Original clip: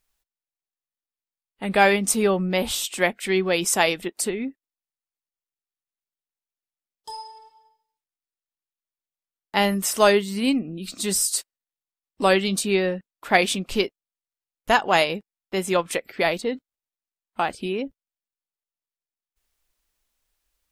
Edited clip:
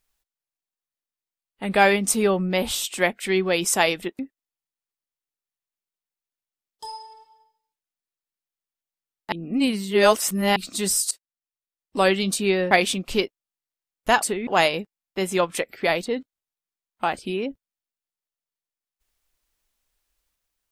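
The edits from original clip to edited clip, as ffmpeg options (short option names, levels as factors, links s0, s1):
-filter_complex "[0:a]asplit=8[s0][s1][s2][s3][s4][s5][s6][s7];[s0]atrim=end=4.192[s8];[s1]atrim=start=4.438:end=9.572[s9];[s2]atrim=start=9.568:end=10.812,asetpts=PTS-STARTPTS,areverse[s10];[s3]atrim=start=10.808:end=11.36,asetpts=PTS-STARTPTS,afade=t=out:st=0.548:d=0.004:c=hsin:silence=0.133352[s11];[s4]atrim=start=11.36:end=12.962,asetpts=PTS-STARTPTS,afade=t=in:d=1.04:silence=0.133352[s12];[s5]atrim=start=13.318:end=14.832[s13];[s6]atrim=start=4.188:end=4.442[s14];[s7]atrim=start=14.828[s15];[s8][s9]acrossfade=d=0.004:c1=hsin:c2=hsin[s16];[s16][s10]acrossfade=d=0.004:c1=hsin:c2=hsin[s17];[s11][s12]concat=n=2:v=0:a=1[s18];[s17][s18]acrossfade=d=0.004:c1=hsin:c2=hsin[s19];[s19][s13]acrossfade=d=0.004:c1=hsin:c2=hsin[s20];[s20][s14]acrossfade=d=0.004:c1=hsin:c2=hsin[s21];[s21][s15]acrossfade=d=0.004:c1=hsin:c2=hsin"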